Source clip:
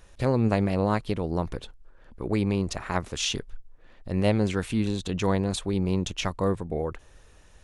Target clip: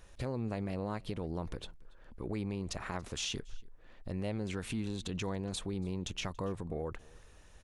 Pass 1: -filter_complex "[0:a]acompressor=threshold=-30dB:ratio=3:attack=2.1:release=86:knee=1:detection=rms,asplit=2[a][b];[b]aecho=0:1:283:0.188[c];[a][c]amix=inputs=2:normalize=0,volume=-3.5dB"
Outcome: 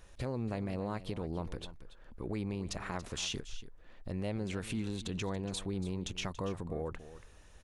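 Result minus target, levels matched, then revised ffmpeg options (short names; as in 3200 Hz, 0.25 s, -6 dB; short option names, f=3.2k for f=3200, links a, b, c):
echo-to-direct +10.5 dB
-filter_complex "[0:a]acompressor=threshold=-30dB:ratio=3:attack=2.1:release=86:knee=1:detection=rms,asplit=2[a][b];[b]aecho=0:1:283:0.0562[c];[a][c]amix=inputs=2:normalize=0,volume=-3.5dB"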